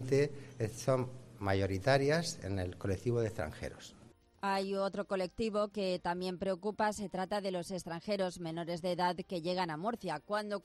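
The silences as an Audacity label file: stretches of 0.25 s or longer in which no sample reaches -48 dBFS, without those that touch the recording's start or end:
4.070000	4.430000	silence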